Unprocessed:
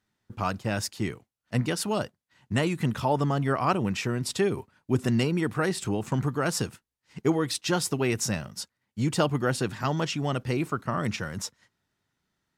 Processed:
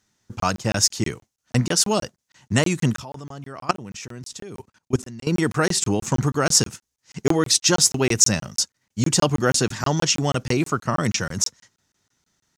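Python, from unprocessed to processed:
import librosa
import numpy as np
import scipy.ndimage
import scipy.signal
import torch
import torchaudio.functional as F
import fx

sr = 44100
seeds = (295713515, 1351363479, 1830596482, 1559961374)

y = fx.peak_eq(x, sr, hz=6300.0, db=13.0, octaves=0.8)
y = fx.level_steps(y, sr, step_db=21, at=(2.96, 5.27))
y = fx.buffer_crackle(y, sr, first_s=0.4, period_s=0.16, block=1024, kind='zero')
y = F.gain(torch.from_numpy(y), 6.0).numpy()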